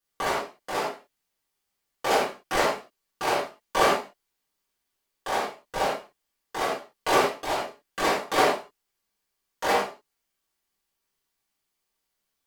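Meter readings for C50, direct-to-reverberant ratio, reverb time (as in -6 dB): 1.5 dB, -9.5 dB, not exponential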